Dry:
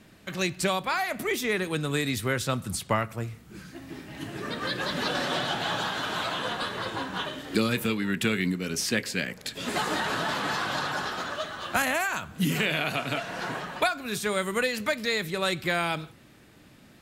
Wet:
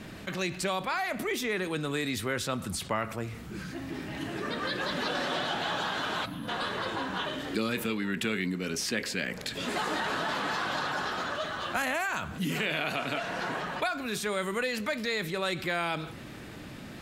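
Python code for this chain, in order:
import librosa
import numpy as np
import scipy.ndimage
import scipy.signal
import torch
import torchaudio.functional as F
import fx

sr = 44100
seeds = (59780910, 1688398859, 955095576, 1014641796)

y = fx.dynamic_eq(x, sr, hz=120.0, q=1.5, threshold_db=-46.0, ratio=4.0, max_db=-7)
y = fx.spec_box(y, sr, start_s=6.25, length_s=0.23, low_hz=310.0, high_hz=9400.0, gain_db=-20)
y = fx.high_shelf(y, sr, hz=6300.0, db=-6.5)
y = fx.env_flatten(y, sr, amount_pct=50)
y = y * librosa.db_to_amplitude(-6.0)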